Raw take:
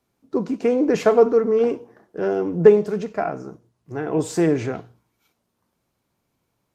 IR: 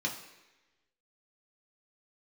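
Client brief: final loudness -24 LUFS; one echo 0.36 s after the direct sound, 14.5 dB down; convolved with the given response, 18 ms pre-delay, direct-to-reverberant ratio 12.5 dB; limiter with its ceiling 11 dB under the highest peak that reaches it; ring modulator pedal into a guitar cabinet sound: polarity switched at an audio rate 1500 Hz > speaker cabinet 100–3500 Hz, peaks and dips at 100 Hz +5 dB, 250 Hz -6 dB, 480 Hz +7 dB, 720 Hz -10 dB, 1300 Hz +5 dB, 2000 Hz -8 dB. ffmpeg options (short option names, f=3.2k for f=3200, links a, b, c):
-filter_complex "[0:a]alimiter=limit=-12dB:level=0:latency=1,aecho=1:1:360:0.188,asplit=2[a][b];[1:a]atrim=start_sample=2205,adelay=18[c];[b][c]afir=irnorm=-1:irlink=0,volume=-17.5dB[d];[a][d]amix=inputs=2:normalize=0,aeval=exprs='val(0)*sgn(sin(2*PI*1500*n/s))':c=same,highpass=100,equalizer=f=100:t=q:w=4:g=5,equalizer=f=250:t=q:w=4:g=-6,equalizer=f=480:t=q:w=4:g=7,equalizer=f=720:t=q:w=4:g=-10,equalizer=f=1.3k:t=q:w=4:g=5,equalizer=f=2k:t=q:w=4:g=-8,lowpass=f=3.5k:w=0.5412,lowpass=f=3.5k:w=1.3066,volume=-1dB"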